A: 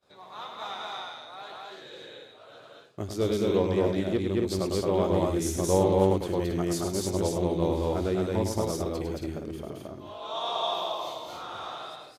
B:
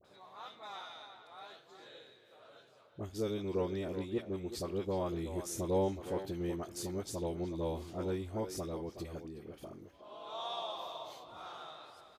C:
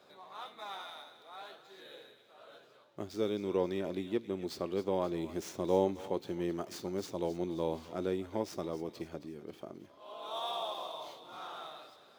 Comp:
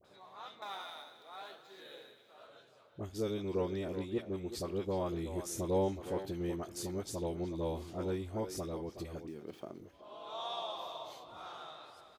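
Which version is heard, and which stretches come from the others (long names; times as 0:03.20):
B
0:00.62–0:02.47: punch in from C
0:09.28–0:09.80: punch in from C
not used: A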